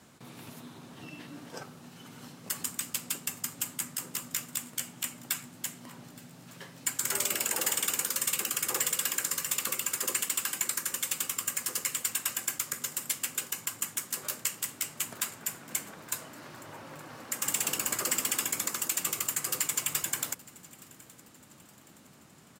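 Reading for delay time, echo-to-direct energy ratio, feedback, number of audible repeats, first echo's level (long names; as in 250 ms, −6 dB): 869 ms, −21.5 dB, 45%, 2, −22.5 dB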